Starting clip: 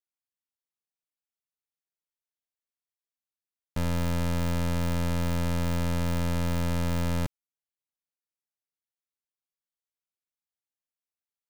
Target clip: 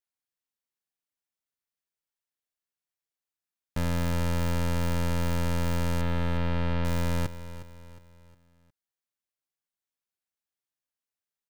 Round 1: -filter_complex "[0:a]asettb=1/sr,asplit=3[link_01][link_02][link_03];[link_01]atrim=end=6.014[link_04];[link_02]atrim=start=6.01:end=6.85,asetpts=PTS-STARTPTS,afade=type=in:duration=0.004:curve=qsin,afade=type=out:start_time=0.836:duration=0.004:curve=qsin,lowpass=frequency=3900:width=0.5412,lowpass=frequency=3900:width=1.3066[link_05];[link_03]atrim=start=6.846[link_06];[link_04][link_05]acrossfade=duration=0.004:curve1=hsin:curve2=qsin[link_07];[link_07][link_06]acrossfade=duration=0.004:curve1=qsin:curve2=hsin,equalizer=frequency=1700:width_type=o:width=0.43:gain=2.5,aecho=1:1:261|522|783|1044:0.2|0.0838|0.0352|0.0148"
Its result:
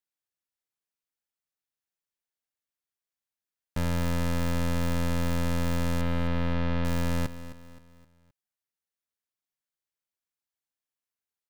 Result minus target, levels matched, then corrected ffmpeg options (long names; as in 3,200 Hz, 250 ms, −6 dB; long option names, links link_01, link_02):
echo 99 ms early
-filter_complex "[0:a]asettb=1/sr,asplit=3[link_01][link_02][link_03];[link_01]atrim=end=6.014[link_04];[link_02]atrim=start=6.01:end=6.85,asetpts=PTS-STARTPTS,afade=type=in:duration=0.004:curve=qsin,afade=type=out:start_time=0.836:duration=0.004:curve=qsin,lowpass=frequency=3900:width=0.5412,lowpass=frequency=3900:width=1.3066[link_05];[link_03]atrim=start=6.846[link_06];[link_04][link_05]acrossfade=duration=0.004:curve1=hsin:curve2=qsin[link_07];[link_07][link_06]acrossfade=duration=0.004:curve1=qsin:curve2=hsin,equalizer=frequency=1700:width_type=o:width=0.43:gain=2.5,aecho=1:1:360|720|1080|1440:0.2|0.0838|0.0352|0.0148"